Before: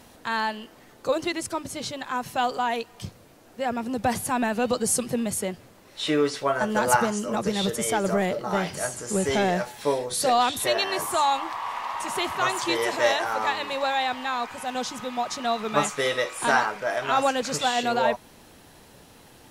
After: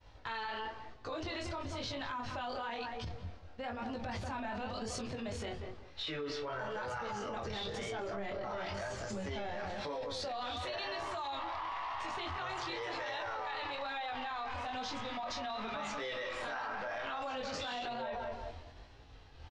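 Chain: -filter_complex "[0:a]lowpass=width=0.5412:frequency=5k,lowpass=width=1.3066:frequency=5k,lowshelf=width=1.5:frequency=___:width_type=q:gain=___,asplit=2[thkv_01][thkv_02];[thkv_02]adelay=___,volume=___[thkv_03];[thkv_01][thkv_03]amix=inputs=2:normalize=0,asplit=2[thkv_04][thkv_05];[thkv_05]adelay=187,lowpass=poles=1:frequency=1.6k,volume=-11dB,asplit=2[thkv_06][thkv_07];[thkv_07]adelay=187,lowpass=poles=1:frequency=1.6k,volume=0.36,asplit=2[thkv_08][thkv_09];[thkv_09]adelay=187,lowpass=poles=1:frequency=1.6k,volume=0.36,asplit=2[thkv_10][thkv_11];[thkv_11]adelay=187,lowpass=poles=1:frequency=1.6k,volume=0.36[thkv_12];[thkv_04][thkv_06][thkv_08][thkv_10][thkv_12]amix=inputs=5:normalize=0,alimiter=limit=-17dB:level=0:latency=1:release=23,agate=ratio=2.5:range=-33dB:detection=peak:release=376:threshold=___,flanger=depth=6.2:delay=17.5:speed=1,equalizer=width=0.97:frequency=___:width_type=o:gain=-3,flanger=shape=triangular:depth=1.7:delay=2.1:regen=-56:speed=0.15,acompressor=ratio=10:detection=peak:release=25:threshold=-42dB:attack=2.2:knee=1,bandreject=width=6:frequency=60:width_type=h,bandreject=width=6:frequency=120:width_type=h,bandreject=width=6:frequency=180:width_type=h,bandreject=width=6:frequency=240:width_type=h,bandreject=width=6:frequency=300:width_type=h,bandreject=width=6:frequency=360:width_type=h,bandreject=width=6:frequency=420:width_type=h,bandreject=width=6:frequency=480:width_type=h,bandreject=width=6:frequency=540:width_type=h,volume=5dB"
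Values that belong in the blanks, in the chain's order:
110, 11, 25, -9dB, -39dB, 350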